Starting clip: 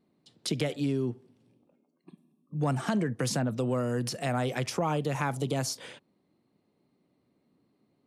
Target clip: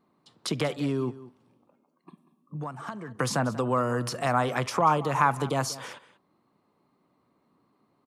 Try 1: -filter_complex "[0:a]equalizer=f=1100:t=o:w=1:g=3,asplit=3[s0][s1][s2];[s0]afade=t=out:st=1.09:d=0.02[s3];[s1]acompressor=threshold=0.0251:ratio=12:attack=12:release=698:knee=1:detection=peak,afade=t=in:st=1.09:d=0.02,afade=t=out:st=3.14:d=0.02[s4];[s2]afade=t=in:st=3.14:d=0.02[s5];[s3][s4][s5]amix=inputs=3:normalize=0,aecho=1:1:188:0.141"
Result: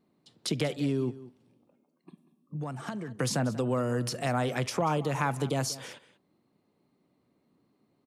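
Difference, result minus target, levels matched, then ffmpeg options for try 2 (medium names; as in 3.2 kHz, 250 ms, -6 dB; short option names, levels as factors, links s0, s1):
1 kHz band -5.0 dB
-filter_complex "[0:a]equalizer=f=1100:t=o:w=1:g=14,asplit=3[s0][s1][s2];[s0]afade=t=out:st=1.09:d=0.02[s3];[s1]acompressor=threshold=0.0251:ratio=12:attack=12:release=698:knee=1:detection=peak,afade=t=in:st=1.09:d=0.02,afade=t=out:st=3.14:d=0.02[s4];[s2]afade=t=in:st=3.14:d=0.02[s5];[s3][s4][s5]amix=inputs=3:normalize=0,aecho=1:1:188:0.141"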